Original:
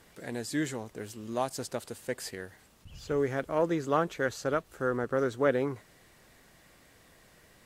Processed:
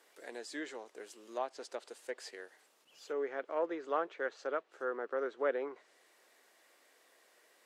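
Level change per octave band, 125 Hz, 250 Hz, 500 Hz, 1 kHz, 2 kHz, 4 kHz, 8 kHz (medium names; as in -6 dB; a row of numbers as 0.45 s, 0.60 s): under -35 dB, -13.5 dB, -6.5 dB, -6.0 dB, -6.5 dB, -8.5 dB, -12.0 dB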